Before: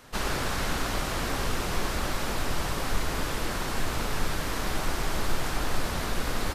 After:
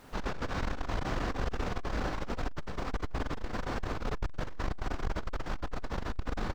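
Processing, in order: low-pass 6.9 kHz 24 dB/octave; treble shelf 2.3 kHz -11.5 dB; doubling 38 ms -12 dB; multi-tap echo 42/867 ms -4/-17.5 dB; added noise pink -59 dBFS; transformer saturation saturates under 120 Hz; trim -1.5 dB

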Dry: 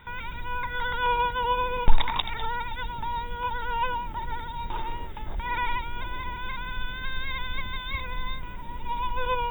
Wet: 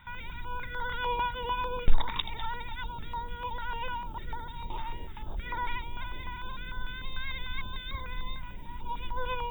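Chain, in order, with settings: step-sequenced notch 6.7 Hz 420–2600 Hz; trim -3.5 dB

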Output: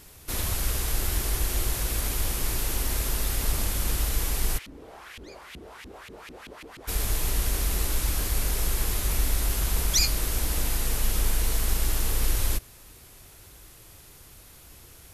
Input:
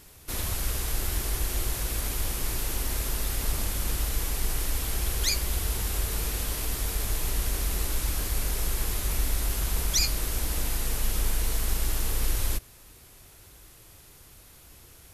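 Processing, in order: 4.57–6.87 s: LFO band-pass saw up 1.5 Hz -> 8 Hz 200–2800 Hz; trim +2 dB

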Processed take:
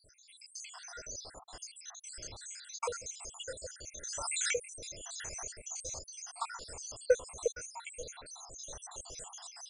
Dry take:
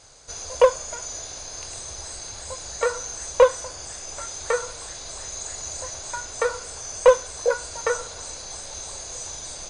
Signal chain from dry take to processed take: random holes in the spectrogram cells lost 76%; 4.03–5.49 s: swell ahead of each attack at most 23 dB/s; trim -5 dB

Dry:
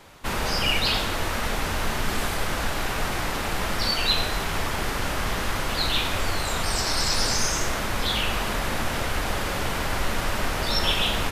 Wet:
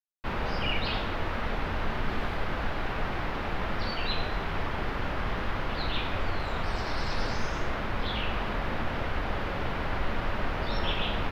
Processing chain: treble shelf 11 kHz +7.5 dB; word length cut 6-bit, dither none; distance through air 330 m; trim -3 dB

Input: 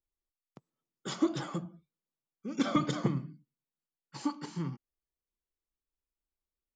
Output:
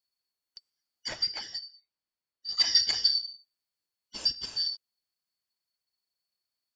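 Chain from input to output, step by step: four frequency bands reordered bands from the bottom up 4321; 1.08–2.49 s: low-pass 2.4 kHz 6 dB/octave; trim +4.5 dB

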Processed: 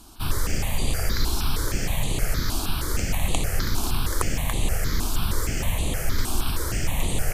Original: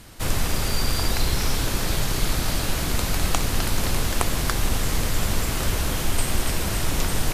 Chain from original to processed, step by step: stepped phaser 6.4 Hz 520–5300 Hz

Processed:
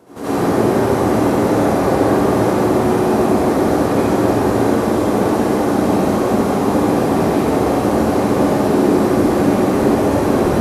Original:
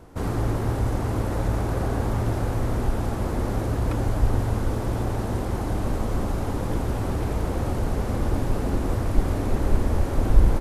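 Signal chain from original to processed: Chebyshev high-pass 260 Hz, order 2; peaking EQ 1.7 kHz -3 dB 2.6 oct; flutter echo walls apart 11.7 m, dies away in 0.46 s; reverberation RT60 1.9 s, pre-delay 63 ms, DRR -12 dB; trim +3.5 dB

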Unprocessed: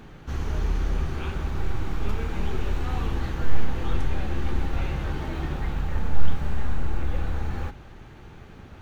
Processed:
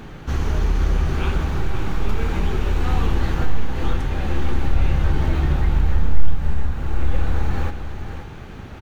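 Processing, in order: 4.67–6.71 s: bass shelf 130 Hz +7.5 dB; compression 2:1, threshold -24 dBFS, peak gain reduction 13 dB; on a send: delay 527 ms -9.5 dB; on the sum: trim +8 dB

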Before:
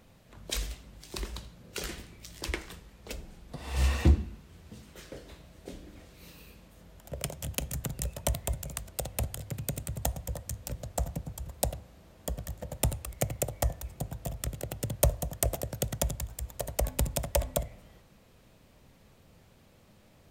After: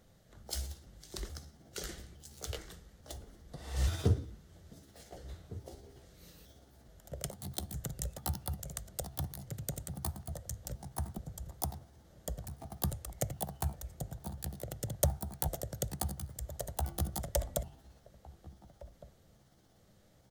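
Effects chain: pitch shift switched off and on +5 st, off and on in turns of 430 ms; graphic EQ with 31 bands 250 Hz -5 dB, 1 kHz -8 dB, 2.5 kHz -11 dB, 6.3 kHz +3 dB; echo from a far wall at 250 m, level -17 dB; trim -4.5 dB

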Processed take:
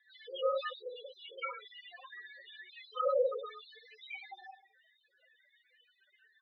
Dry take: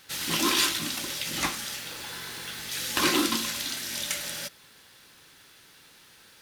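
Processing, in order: reverse bouncing-ball echo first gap 30 ms, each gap 1.25×, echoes 5; loudest bins only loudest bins 4; mistuned SSB +200 Hz 320–2900 Hz

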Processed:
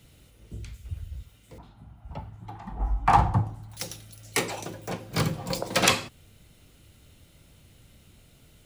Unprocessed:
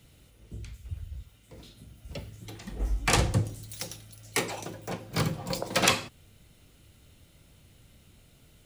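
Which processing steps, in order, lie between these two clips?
1.58–3.77 s: FFT filter 170 Hz 0 dB, 530 Hz -9 dB, 830 Hz +14 dB, 2.1 kHz -8 dB, 6 kHz -19 dB; trim +2 dB

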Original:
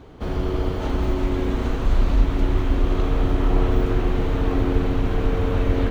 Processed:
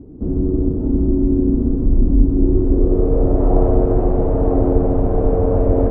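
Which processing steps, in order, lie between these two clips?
low-pass sweep 290 Hz -> 630 Hz, 2.25–3.50 s; trim +4 dB

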